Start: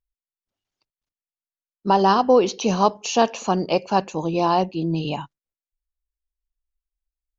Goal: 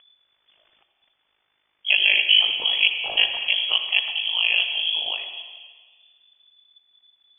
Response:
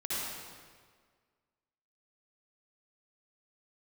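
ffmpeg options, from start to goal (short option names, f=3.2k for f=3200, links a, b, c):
-filter_complex "[0:a]acompressor=mode=upward:threshold=-36dB:ratio=2.5,tremolo=f=52:d=0.857,asplit=2[a][b];[1:a]atrim=start_sample=2205[c];[b][c]afir=irnorm=-1:irlink=0,volume=-10dB[d];[a][d]amix=inputs=2:normalize=0,lowpass=f=3k:t=q:w=0.5098,lowpass=f=3k:t=q:w=0.6013,lowpass=f=3k:t=q:w=0.9,lowpass=f=3k:t=q:w=2.563,afreqshift=-3500"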